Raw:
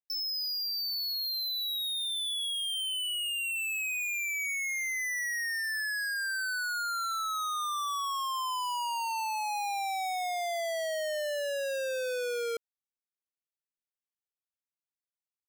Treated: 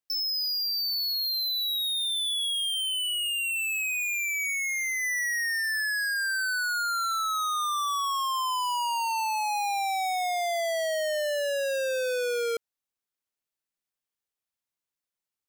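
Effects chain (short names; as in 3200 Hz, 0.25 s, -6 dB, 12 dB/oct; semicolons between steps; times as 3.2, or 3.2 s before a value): 2.69–5.03 HPF 1200 Hz 6 dB/oct; gain +4.5 dB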